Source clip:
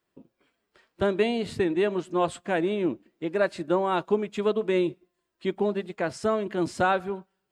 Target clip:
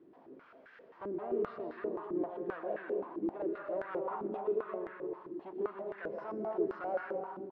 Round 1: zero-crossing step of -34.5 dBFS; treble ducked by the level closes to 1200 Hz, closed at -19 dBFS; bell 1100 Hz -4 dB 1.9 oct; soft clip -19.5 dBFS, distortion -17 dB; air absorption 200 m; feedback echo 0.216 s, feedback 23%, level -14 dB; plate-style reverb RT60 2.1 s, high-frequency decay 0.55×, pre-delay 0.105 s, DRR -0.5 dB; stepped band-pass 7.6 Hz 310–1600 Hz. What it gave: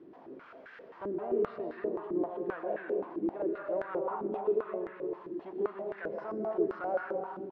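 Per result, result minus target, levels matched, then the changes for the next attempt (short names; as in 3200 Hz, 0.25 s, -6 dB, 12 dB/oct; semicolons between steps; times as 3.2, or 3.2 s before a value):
soft clip: distortion -7 dB; zero-crossing step: distortion +6 dB
change: soft clip -26 dBFS, distortion -10 dB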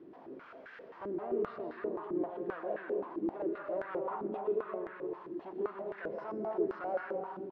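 zero-crossing step: distortion +6 dB
change: zero-crossing step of -41.5 dBFS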